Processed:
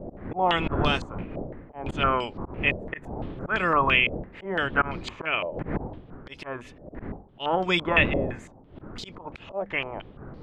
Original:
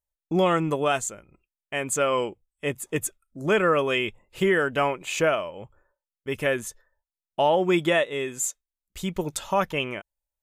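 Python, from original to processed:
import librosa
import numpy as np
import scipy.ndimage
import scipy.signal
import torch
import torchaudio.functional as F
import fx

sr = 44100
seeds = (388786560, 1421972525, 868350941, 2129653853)

y = fx.spec_clip(x, sr, under_db=12)
y = fx.dmg_wind(y, sr, seeds[0], corner_hz=250.0, level_db=-27.0)
y = fx.peak_eq(y, sr, hz=140.0, db=-2.0, octaves=1.4)
y = fx.hum_notches(y, sr, base_hz=50, count=5)
y = fx.auto_swell(y, sr, attack_ms=166.0)
y = fx.filter_held_lowpass(y, sr, hz=5.9, low_hz=610.0, high_hz=4500.0)
y = y * librosa.db_to_amplitude(-3.5)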